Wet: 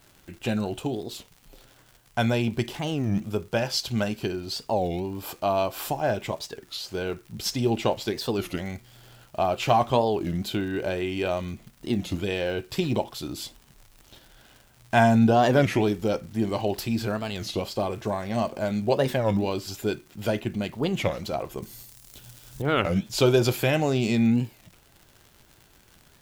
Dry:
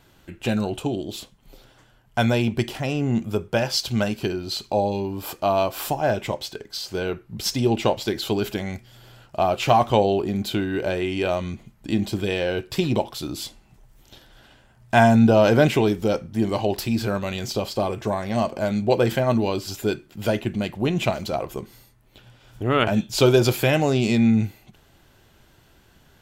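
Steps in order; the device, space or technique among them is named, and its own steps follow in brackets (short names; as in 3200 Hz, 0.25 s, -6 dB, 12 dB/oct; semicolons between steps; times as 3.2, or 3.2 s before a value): warped LP (record warp 33 1/3 rpm, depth 250 cents; crackle 120/s -36 dBFS; white noise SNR 39 dB); 21.62–22.62 tone controls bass +5 dB, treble +12 dB; gain -3.5 dB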